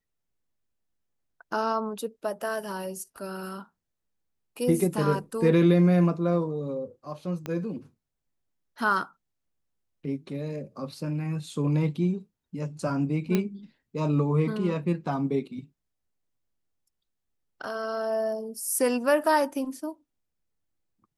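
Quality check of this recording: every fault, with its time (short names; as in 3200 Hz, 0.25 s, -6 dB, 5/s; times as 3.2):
7.46 pop -19 dBFS
13.35 pop -12 dBFS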